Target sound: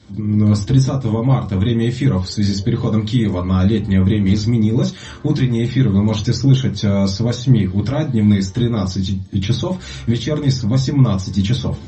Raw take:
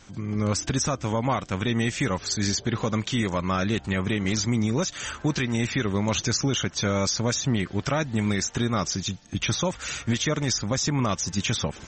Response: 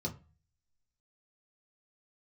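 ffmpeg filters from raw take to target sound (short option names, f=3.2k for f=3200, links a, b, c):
-filter_complex "[1:a]atrim=start_sample=2205,afade=t=out:st=0.16:d=0.01,atrim=end_sample=7497,asetrate=37485,aresample=44100[a];[0:a][a]afir=irnorm=-1:irlink=0,volume=-1.5dB"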